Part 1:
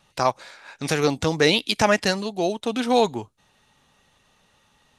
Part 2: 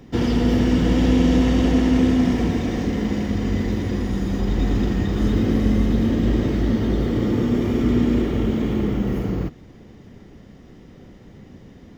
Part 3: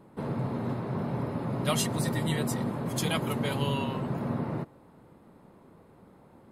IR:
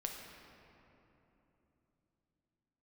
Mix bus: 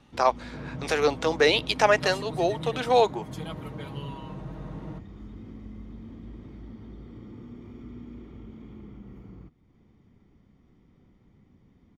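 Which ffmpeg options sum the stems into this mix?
-filter_complex "[0:a]highpass=frequency=360:width=0.5412,highpass=frequency=360:width=1.3066,volume=0dB[link_01];[1:a]aecho=1:1:0.9:0.4,acompressor=threshold=-42dB:ratio=1.5,volume=-15.5dB[link_02];[2:a]aecho=1:1:6.4:0.81,adelay=350,volume=-10.5dB[link_03];[link_01][link_02][link_03]amix=inputs=3:normalize=0,highshelf=frequency=5300:gain=-11.5"

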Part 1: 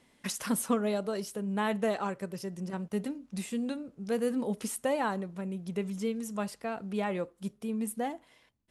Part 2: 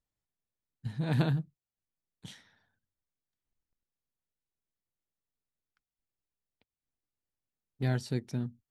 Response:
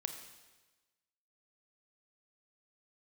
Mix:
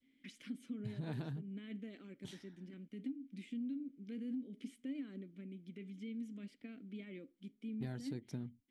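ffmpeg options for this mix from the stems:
-filter_complex "[0:a]adynamicequalizer=threshold=0.00251:dfrequency=2200:dqfactor=1.2:tfrequency=2200:tqfactor=1.2:attack=5:release=100:ratio=0.375:range=2.5:mode=cutabove:tftype=bell,alimiter=level_in=4dB:limit=-24dB:level=0:latency=1:release=14,volume=-4dB,asplit=3[link_01][link_02][link_03];[link_01]bandpass=frequency=270:width_type=q:width=8,volume=0dB[link_04];[link_02]bandpass=frequency=2290:width_type=q:width=8,volume=-6dB[link_05];[link_03]bandpass=frequency=3010:width_type=q:width=8,volume=-9dB[link_06];[link_04][link_05][link_06]amix=inputs=3:normalize=0,volume=1dB[link_07];[1:a]acontrast=77,volume=-12.5dB[link_08];[link_07][link_08]amix=inputs=2:normalize=0,adynamicequalizer=threshold=0.00398:dfrequency=290:dqfactor=1.4:tfrequency=290:tqfactor=1.4:attack=5:release=100:ratio=0.375:range=2:mode=boostabove:tftype=bell,acompressor=threshold=-38dB:ratio=16"

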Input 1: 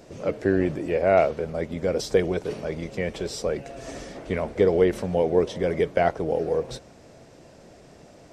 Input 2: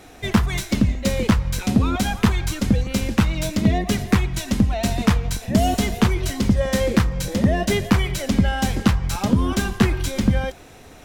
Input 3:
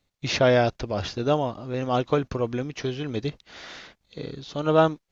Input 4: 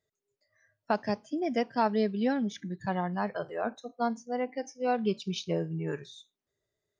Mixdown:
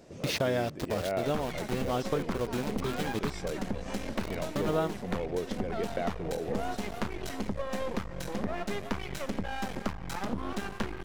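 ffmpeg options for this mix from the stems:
ffmpeg -i stem1.wav -i stem2.wav -i stem3.wav -i stem4.wav -filter_complex "[0:a]volume=-6dB[link_01];[1:a]equalizer=frequency=820:width=0.31:gain=10.5,aeval=exprs='max(val(0),0)':channel_layout=same,adelay=1000,volume=-10.5dB[link_02];[2:a]aeval=exprs='val(0)*gte(abs(val(0)),0.0376)':channel_layout=same,volume=2dB[link_03];[3:a]adelay=700,volume=-12.5dB[link_04];[link_01][link_02][link_03][link_04]amix=inputs=4:normalize=0,equalizer=frequency=200:width_type=o:width=0.77:gain=2.5,acompressor=threshold=-30dB:ratio=3" out.wav

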